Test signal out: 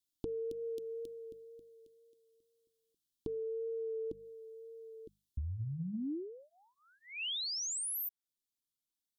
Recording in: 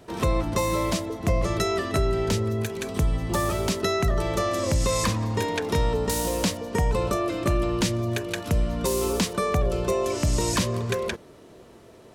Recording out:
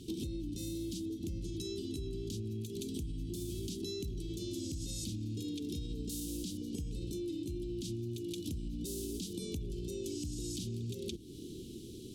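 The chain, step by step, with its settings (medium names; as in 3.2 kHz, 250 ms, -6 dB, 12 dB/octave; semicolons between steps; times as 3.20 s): rattle on loud lows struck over -25 dBFS, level -36 dBFS; elliptic band-stop 340–3300 Hz, stop band 40 dB; hum notches 50/100/150/200 Hz; dynamic bell 300 Hz, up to +6 dB, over -47 dBFS, Q 3.7; in parallel at +2.5 dB: gain riding within 4 dB 0.5 s; on the sum: peak limiter -14 dBFS; compression 8:1, threshold -34 dBFS; wow and flutter 19 cents; trim -3 dB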